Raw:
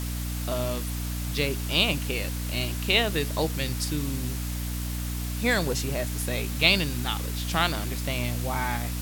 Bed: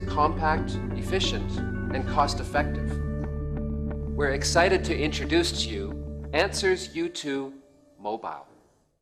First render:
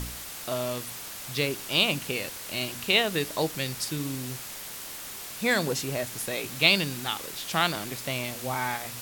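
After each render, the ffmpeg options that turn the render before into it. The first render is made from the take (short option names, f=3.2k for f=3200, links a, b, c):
-af "bandreject=f=60:t=h:w=4,bandreject=f=120:t=h:w=4,bandreject=f=180:t=h:w=4,bandreject=f=240:t=h:w=4,bandreject=f=300:t=h:w=4"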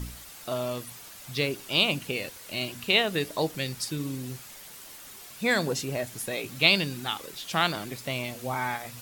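-af "afftdn=nr=8:nf=-40"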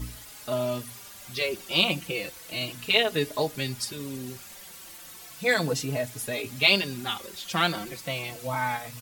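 -filter_complex "[0:a]asplit=2[a][b];[b]acrusher=bits=5:mode=log:mix=0:aa=0.000001,volume=-6dB[c];[a][c]amix=inputs=2:normalize=0,asplit=2[d][e];[e]adelay=4.2,afreqshift=-0.34[f];[d][f]amix=inputs=2:normalize=1"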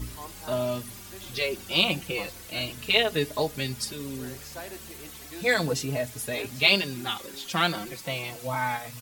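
-filter_complex "[1:a]volume=-20dB[a];[0:a][a]amix=inputs=2:normalize=0"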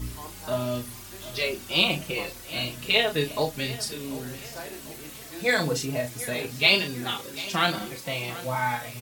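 -filter_complex "[0:a]asplit=2[a][b];[b]adelay=33,volume=-6.5dB[c];[a][c]amix=inputs=2:normalize=0,asplit=2[d][e];[e]adelay=741,lowpass=f=4k:p=1,volume=-16dB,asplit=2[f][g];[g]adelay=741,lowpass=f=4k:p=1,volume=0.49,asplit=2[h][i];[i]adelay=741,lowpass=f=4k:p=1,volume=0.49,asplit=2[j][k];[k]adelay=741,lowpass=f=4k:p=1,volume=0.49[l];[d][f][h][j][l]amix=inputs=5:normalize=0"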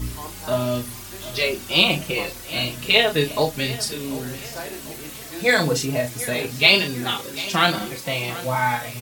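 -af "volume=5.5dB,alimiter=limit=-1dB:level=0:latency=1"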